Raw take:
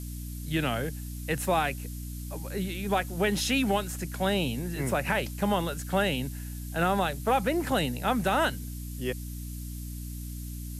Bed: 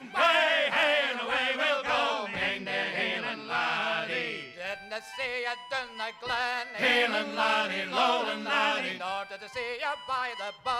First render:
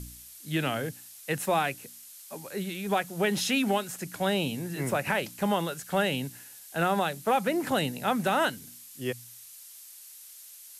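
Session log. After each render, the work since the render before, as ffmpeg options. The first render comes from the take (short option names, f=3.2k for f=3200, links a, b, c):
-af "bandreject=f=60:t=h:w=4,bandreject=f=120:t=h:w=4,bandreject=f=180:t=h:w=4,bandreject=f=240:t=h:w=4,bandreject=f=300:t=h:w=4"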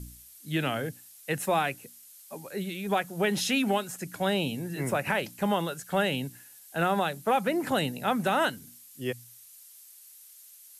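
-af "afftdn=nr=6:nf=-49"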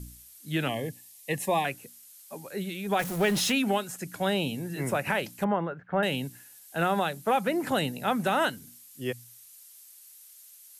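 -filter_complex "[0:a]asettb=1/sr,asplit=3[a][b][c];[a]atrim=end=0.684[d];[b]atrim=start=0.68:end=1.65,asetpts=PTS-STARTPTS,afade=t=in:d=0.004:c=qsin,afade=t=out:st=0.966:d=0.004:c=qsin,asuperstop=centerf=1400:order=20:qfactor=2.9[e];[c]atrim=start=1.646[f];[d][e]acrossfade=d=0.004:c1=hsin:c2=qsin[g];[g][f]acrossfade=d=0.004:c1=qsin:c2=hsin,asettb=1/sr,asplit=3[h][i][j];[h]atrim=end=2.994[k];[i]atrim=start=2.99:end=3.52,asetpts=PTS-STARTPTS,afade=t=in:d=0.004:c=qsin,afade=t=out:st=0.526:d=0.004:c=qsin,aeval=exprs='val(0)+0.5*0.0282*sgn(val(0))':c=same[l];[j]atrim=start=3.516[m];[k][l]acrossfade=d=0.004:c1=hsin:c2=qsin[n];[n][m]acrossfade=d=0.004:c1=qsin:c2=hsin,asettb=1/sr,asplit=3[o][p][q];[o]atrim=end=5.444[r];[p]atrim=start=5.44:end=6.03,asetpts=PTS-STARTPTS,afade=t=in:d=0.004:c=qsin,afade=t=out:st=0.586:d=0.004:c=qsin,lowpass=f=1.9k:w=0.5412,lowpass=f=1.9k:w=1.3066[s];[q]atrim=start=6.026[t];[r][s]acrossfade=d=0.004:c1=hsin:c2=qsin[u];[u][t]acrossfade=d=0.004:c1=qsin:c2=hsin"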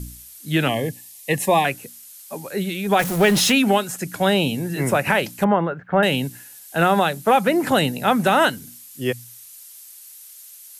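-af "volume=9dB"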